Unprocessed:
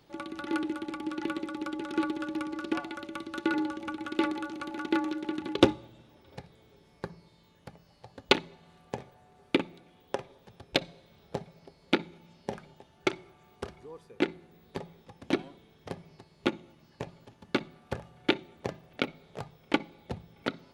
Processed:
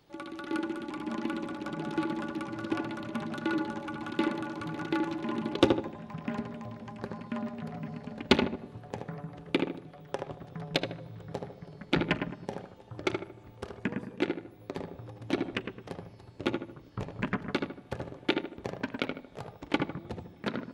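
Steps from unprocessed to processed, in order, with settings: darkening echo 76 ms, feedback 41%, low-pass 1700 Hz, level -3.5 dB; echoes that change speed 0.353 s, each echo -6 st, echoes 3, each echo -6 dB; gain -2.5 dB

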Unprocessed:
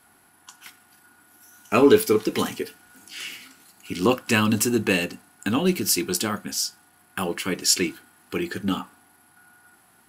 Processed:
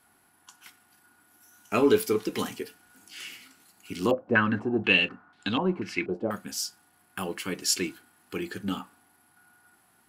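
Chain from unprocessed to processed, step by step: 4.11–6.31 stepped low-pass 4.1 Hz 590–3800 Hz; gain -6 dB

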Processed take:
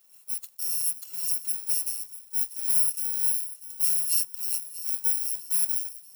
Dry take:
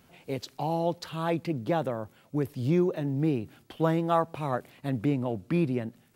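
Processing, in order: FFT order left unsorted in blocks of 128 samples; differentiator; thin delay 0.642 s, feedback 45%, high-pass 2700 Hz, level -14 dB; in parallel at -8 dB: companded quantiser 4-bit; on the sum: bell 750 Hz +5.5 dB 1.2 oct; gain -6 dB

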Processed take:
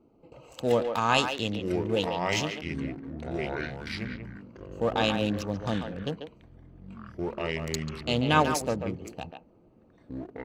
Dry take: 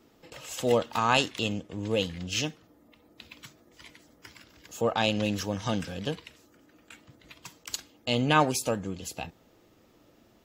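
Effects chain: Wiener smoothing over 25 samples; speakerphone echo 0.14 s, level -6 dB; echoes that change speed 0.762 s, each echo -5 st, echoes 3, each echo -6 dB

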